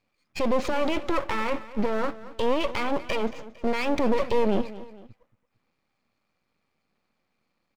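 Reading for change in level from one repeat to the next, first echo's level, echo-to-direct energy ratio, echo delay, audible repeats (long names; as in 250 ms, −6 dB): −7.0 dB, −16.5 dB, −15.5 dB, 227 ms, 2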